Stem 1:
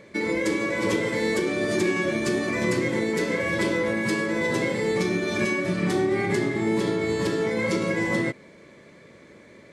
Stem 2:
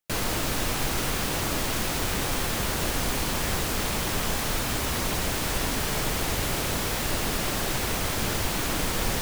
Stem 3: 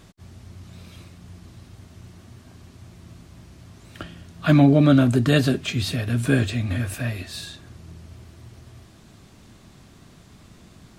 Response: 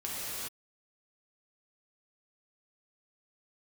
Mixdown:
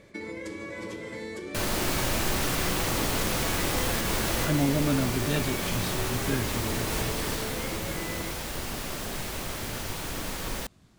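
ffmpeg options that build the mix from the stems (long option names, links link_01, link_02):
-filter_complex "[0:a]acompressor=threshold=-28dB:ratio=6,volume=-6.5dB[link_01];[1:a]adelay=1450,volume=-4.5dB,afade=type=out:start_time=6.97:duration=0.57:silence=0.473151,asplit=2[link_02][link_03];[link_03]volume=-5.5dB[link_04];[2:a]volume=-11dB,asplit=2[link_05][link_06];[link_06]apad=whole_len=470437[link_07];[link_02][link_07]sidechaincompress=threshold=-43dB:ratio=8:attack=6.9:release=192[link_08];[3:a]atrim=start_sample=2205[link_09];[link_04][link_09]afir=irnorm=-1:irlink=0[link_10];[link_01][link_08][link_05][link_10]amix=inputs=4:normalize=0"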